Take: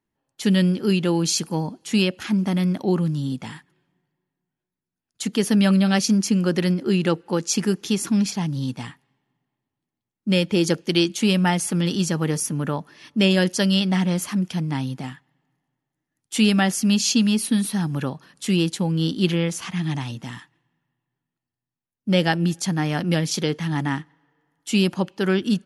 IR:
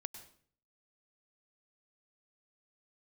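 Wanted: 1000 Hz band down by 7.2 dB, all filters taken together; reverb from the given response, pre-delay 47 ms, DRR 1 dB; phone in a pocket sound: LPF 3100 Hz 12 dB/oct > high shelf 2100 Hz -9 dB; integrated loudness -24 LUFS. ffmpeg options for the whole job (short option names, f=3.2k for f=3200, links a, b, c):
-filter_complex "[0:a]equalizer=f=1k:t=o:g=-8,asplit=2[a][b];[1:a]atrim=start_sample=2205,adelay=47[c];[b][c]afir=irnorm=-1:irlink=0,volume=2dB[d];[a][d]amix=inputs=2:normalize=0,lowpass=3.1k,highshelf=f=2.1k:g=-9,volume=-3.5dB"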